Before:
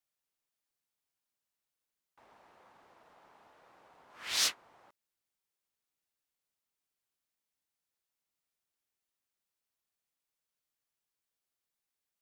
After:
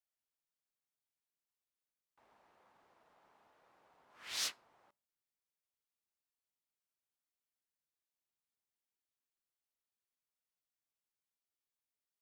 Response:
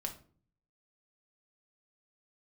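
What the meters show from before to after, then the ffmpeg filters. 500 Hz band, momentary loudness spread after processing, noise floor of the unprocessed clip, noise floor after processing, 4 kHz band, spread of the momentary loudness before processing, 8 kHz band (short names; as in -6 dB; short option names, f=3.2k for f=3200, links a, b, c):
-8.0 dB, 11 LU, under -85 dBFS, under -85 dBFS, -8.0 dB, 11 LU, -8.0 dB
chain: -filter_complex "[0:a]asplit=2[a][b];[1:a]atrim=start_sample=2205[c];[b][c]afir=irnorm=-1:irlink=0,volume=-18dB[d];[a][d]amix=inputs=2:normalize=0,volume=-9dB"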